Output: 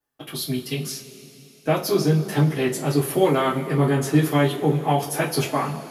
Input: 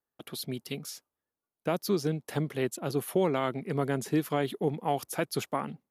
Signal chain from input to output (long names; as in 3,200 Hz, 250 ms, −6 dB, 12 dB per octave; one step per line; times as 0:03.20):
coupled-rooms reverb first 0.23 s, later 3.6 s, from −22 dB, DRR −9 dB